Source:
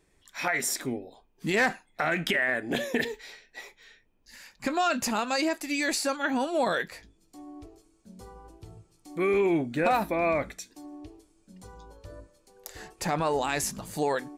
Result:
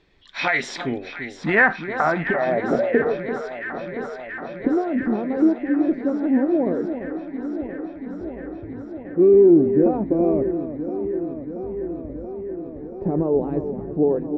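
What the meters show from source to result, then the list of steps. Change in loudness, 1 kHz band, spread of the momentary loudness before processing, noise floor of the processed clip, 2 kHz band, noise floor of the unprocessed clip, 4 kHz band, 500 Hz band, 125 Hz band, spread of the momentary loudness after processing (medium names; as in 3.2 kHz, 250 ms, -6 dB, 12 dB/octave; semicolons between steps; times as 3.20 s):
+6.5 dB, +1.5 dB, 19 LU, -36 dBFS, +5.0 dB, -67 dBFS, no reading, +10.0 dB, +8.0 dB, 15 LU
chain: distance through air 84 m; low-pass sweep 3.9 kHz -> 370 Hz, 0.60–3.34 s; echo whose repeats swap between lows and highs 340 ms, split 1.3 kHz, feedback 87%, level -10 dB; loudness maximiser +11.5 dB; trim -5.5 dB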